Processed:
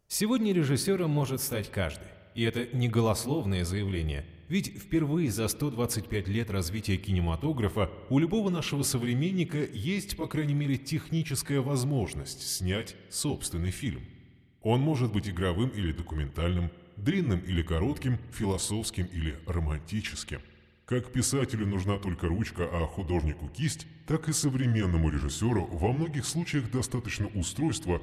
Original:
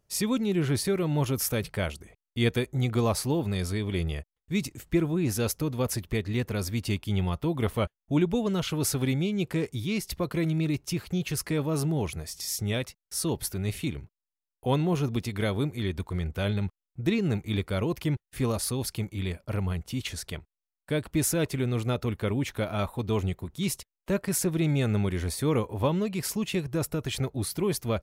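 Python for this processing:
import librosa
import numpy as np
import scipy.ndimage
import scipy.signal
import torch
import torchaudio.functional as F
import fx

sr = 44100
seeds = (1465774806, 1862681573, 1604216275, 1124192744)

y = fx.pitch_glide(x, sr, semitones=-4.5, runs='starting unshifted')
y = fx.rev_spring(y, sr, rt60_s=1.9, pass_ms=(50,), chirp_ms=20, drr_db=15.0)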